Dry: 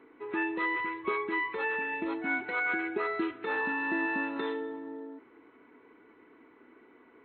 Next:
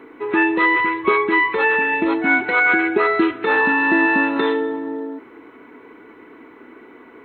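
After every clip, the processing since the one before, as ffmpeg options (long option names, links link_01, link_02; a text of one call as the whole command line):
ffmpeg -i in.wav -af "acontrast=70,volume=8dB" out.wav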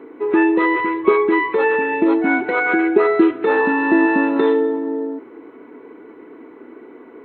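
ffmpeg -i in.wav -af "equalizer=frequency=400:width=0.49:gain=12,volume=-7dB" out.wav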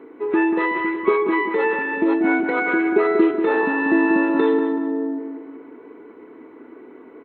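ffmpeg -i in.wav -filter_complex "[0:a]asplit=2[link_01][link_02];[link_02]adelay=188,lowpass=frequency=1900:poles=1,volume=-6dB,asplit=2[link_03][link_04];[link_04]adelay=188,lowpass=frequency=1900:poles=1,volume=0.46,asplit=2[link_05][link_06];[link_06]adelay=188,lowpass=frequency=1900:poles=1,volume=0.46,asplit=2[link_07][link_08];[link_08]adelay=188,lowpass=frequency=1900:poles=1,volume=0.46,asplit=2[link_09][link_10];[link_10]adelay=188,lowpass=frequency=1900:poles=1,volume=0.46,asplit=2[link_11][link_12];[link_12]adelay=188,lowpass=frequency=1900:poles=1,volume=0.46[link_13];[link_01][link_03][link_05][link_07][link_09][link_11][link_13]amix=inputs=7:normalize=0,volume=-3.5dB" out.wav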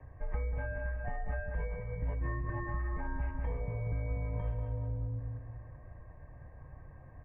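ffmpeg -i in.wav -filter_complex "[0:a]acrossover=split=260|710[link_01][link_02][link_03];[link_01]acompressor=threshold=-33dB:ratio=4[link_04];[link_02]acompressor=threshold=-30dB:ratio=4[link_05];[link_03]acompressor=threshold=-37dB:ratio=4[link_06];[link_04][link_05][link_06]amix=inputs=3:normalize=0,highpass=frequency=180:width_type=q:width=0.5412,highpass=frequency=180:width_type=q:width=1.307,lowpass=frequency=2700:width_type=q:width=0.5176,lowpass=frequency=2700:width_type=q:width=0.7071,lowpass=frequency=2700:width_type=q:width=1.932,afreqshift=-390,asuperstop=centerf=1400:order=12:qfactor=5.1,volume=-7.5dB" out.wav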